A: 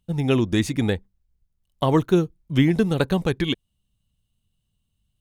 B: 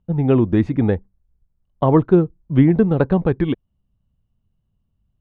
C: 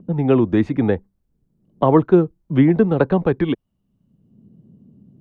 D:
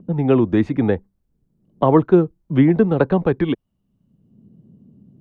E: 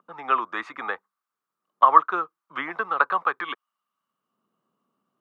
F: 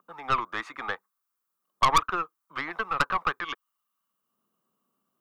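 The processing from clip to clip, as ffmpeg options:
-af "lowpass=1.2k,volume=5dB"
-filter_complex "[0:a]lowshelf=f=150:g=-10.5,acrossover=split=160|360|890[a][b][c][d];[b]acompressor=mode=upward:threshold=-23dB:ratio=2.5[e];[a][e][c][d]amix=inputs=4:normalize=0,volume=2.5dB"
-af anull
-af "highpass=f=1.2k:t=q:w=7.7,volume=-2dB"
-af "aeval=exprs='(tanh(5.01*val(0)+0.55)-tanh(0.55))/5.01':c=same,aemphasis=mode=production:type=50kf,volume=-1dB"

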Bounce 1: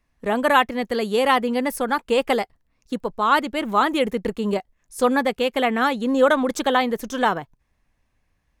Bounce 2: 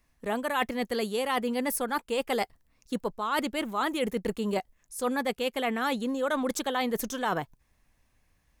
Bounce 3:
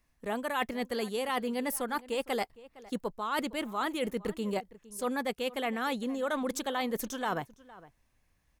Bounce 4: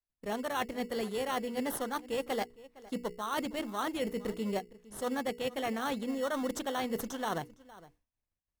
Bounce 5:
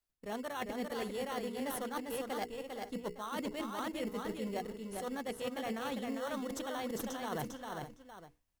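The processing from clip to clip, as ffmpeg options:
-af "highshelf=f=5.8k:g=9,areverse,acompressor=threshold=-26dB:ratio=6,areverse"
-filter_complex "[0:a]asplit=2[a][b];[b]adelay=460.6,volume=-19dB,highshelf=f=4k:g=-10.4[c];[a][c]amix=inputs=2:normalize=0,volume=-3.5dB"
-filter_complex "[0:a]bandreject=f=60:t=h:w=6,bandreject=f=120:t=h:w=6,bandreject=f=180:t=h:w=6,bandreject=f=240:t=h:w=6,bandreject=f=300:t=h:w=6,bandreject=f=360:t=h:w=6,bandreject=f=420:t=h:w=6,bandreject=f=480:t=h:w=6,agate=range=-33dB:threshold=-58dB:ratio=3:detection=peak,asplit=2[a][b];[b]acrusher=samples=18:mix=1:aa=0.000001,volume=-4dB[c];[a][c]amix=inputs=2:normalize=0,volume=-4.5dB"
-af "areverse,acompressor=threshold=-42dB:ratio=6,areverse,aecho=1:1:400:0.596,volume=5dB"

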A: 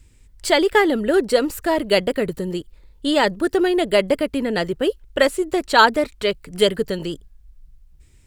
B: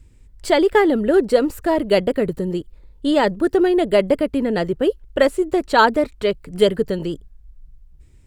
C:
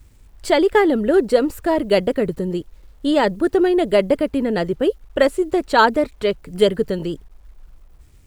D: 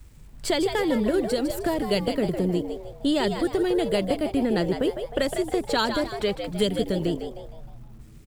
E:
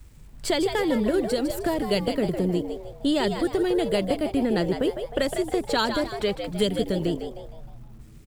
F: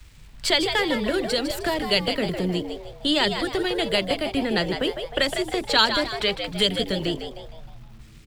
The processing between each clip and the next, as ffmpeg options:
-af "tiltshelf=f=1.3k:g=4.5,volume=-1.5dB"
-af "acrusher=bits=9:mix=0:aa=0.000001"
-filter_complex "[0:a]acrossover=split=210|3000[a][b][c];[b]acompressor=threshold=-24dB:ratio=6[d];[a][d][c]amix=inputs=3:normalize=0,asplit=2[e][f];[f]asplit=5[g][h][i][j][k];[g]adelay=155,afreqshift=100,volume=-8dB[l];[h]adelay=310,afreqshift=200,volume=-16dB[m];[i]adelay=465,afreqshift=300,volume=-23.9dB[n];[j]adelay=620,afreqshift=400,volume=-31.9dB[o];[k]adelay=775,afreqshift=500,volume=-39.8dB[p];[l][m][n][o][p]amix=inputs=5:normalize=0[q];[e][q]amix=inputs=2:normalize=0"
-af anull
-filter_complex "[0:a]acrossover=split=200|470|4300[a][b][c][d];[b]flanger=delay=18:depth=4.9:speed=0.25[e];[c]crystalizer=i=8:c=0[f];[a][e][f][d]amix=inputs=4:normalize=0"

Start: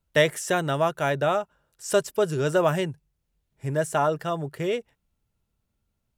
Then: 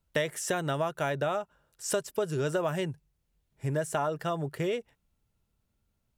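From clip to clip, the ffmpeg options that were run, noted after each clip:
-af "acompressor=threshold=-27dB:ratio=4"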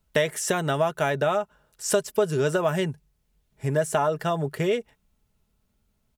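-af "aecho=1:1:4.7:0.32,volume=5.5dB"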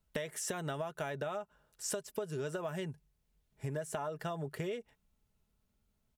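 -af "acompressor=threshold=-28dB:ratio=6,volume=-7dB"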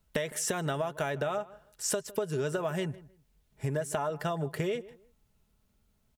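-filter_complex "[0:a]asplit=2[a][b];[b]adelay=157,lowpass=f=1.8k:p=1,volume=-18.5dB,asplit=2[c][d];[d]adelay=157,lowpass=f=1.8k:p=1,volume=0.23[e];[a][c][e]amix=inputs=3:normalize=0,volume=6.5dB"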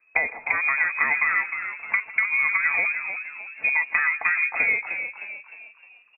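-filter_complex "[0:a]lowpass=f=2.2k:t=q:w=0.5098,lowpass=f=2.2k:t=q:w=0.6013,lowpass=f=2.2k:t=q:w=0.9,lowpass=f=2.2k:t=q:w=2.563,afreqshift=-2600,asplit=6[a][b][c][d][e][f];[b]adelay=307,afreqshift=70,volume=-8dB[g];[c]adelay=614,afreqshift=140,volume=-15.1dB[h];[d]adelay=921,afreqshift=210,volume=-22.3dB[i];[e]adelay=1228,afreqshift=280,volume=-29.4dB[j];[f]adelay=1535,afreqshift=350,volume=-36.5dB[k];[a][g][h][i][j][k]amix=inputs=6:normalize=0,volume=8.5dB"

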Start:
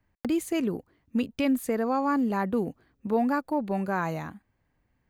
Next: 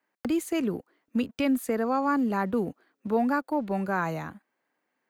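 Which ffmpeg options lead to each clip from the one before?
-filter_complex "[0:a]equalizer=f=1.4k:t=o:w=0.36:g=3.5,acrossover=split=270|420|2400[a][b][c][d];[a]aeval=exprs='sgn(val(0))*max(abs(val(0))-0.00126,0)':c=same[e];[e][b][c][d]amix=inputs=4:normalize=0"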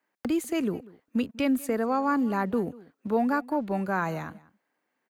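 -filter_complex "[0:a]asplit=2[a][b];[b]adelay=192.4,volume=-21dB,highshelf=f=4k:g=-4.33[c];[a][c]amix=inputs=2:normalize=0"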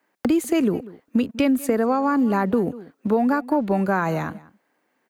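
-af "acompressor=threshold=-26dB:ratio=6,equalizer=f=350:t=o:w=2.7:g=3,volume=7.5dB"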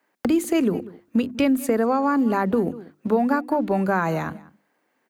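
-af "bandreject=f=50:t=h:w=6,bandreject=f=100:t=h:w=6,bandreject=f=150:t=h:w=6,bandreject=f=200:t=h:w=6,bandreject=f=250:t=h:w=6,bandreject=f=300:t=h:w=6,bandreject=f=350:t=h:w=6"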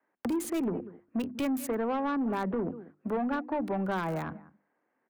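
-filter_complex "[0:a]acrossover=split=220|1400|2200[a][b][c][d];[d]acrusher=bits=5:mix=0:aa=0.000001[e];[a][b][c][e]amix=inputs=4:normalize=0,asoftclip=type=tanh:threshold=-18.5dB,volume=-6.5dB"

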